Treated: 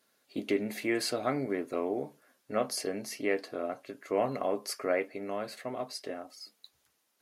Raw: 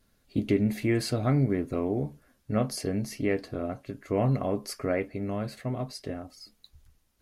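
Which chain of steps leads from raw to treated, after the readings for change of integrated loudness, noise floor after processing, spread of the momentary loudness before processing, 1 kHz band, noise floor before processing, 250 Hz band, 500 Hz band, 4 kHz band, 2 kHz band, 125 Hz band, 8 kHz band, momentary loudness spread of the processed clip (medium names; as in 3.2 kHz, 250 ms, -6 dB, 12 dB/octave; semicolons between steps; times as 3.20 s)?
-4.0 dB, -74 dBFS, 10 LU, +0.5 dB, -69 dBFS, -7.0 dB, -1.0 dB, +1.0 dB, +1.0 dB, -18.0 dB, +1.0 dB, 11 LU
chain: high-pass 410 Hz 12 dB/octave; trim +1 dB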